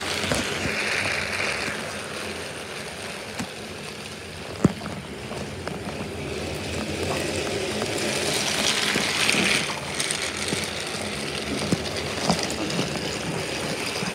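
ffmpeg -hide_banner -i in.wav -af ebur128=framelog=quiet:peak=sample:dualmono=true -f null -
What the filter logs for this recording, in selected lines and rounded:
Integrated loudness:
  I:         -22.8 LUFS
  Threshold: -32.8 LUFS
Loudness range:
  LRA:         7.9 LU
  Threshold: -42.8 LUFS
  LRA low:   -27.5 LUFS
  LRA high:  -19.6 LUFS
Sample peak:
  Peak:       -4.1 dBFS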